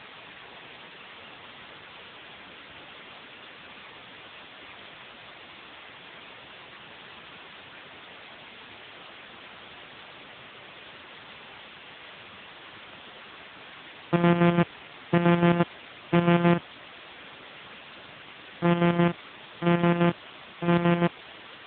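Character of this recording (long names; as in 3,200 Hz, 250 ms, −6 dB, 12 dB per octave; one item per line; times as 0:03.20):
a buzz of ramps at a fixed pitch in blocks of 256 samples
chopped level 5.9 Hz, depth 60%, duty 55%
a quantiser's noise floor 6 bits, dither triangular
AMR narrowband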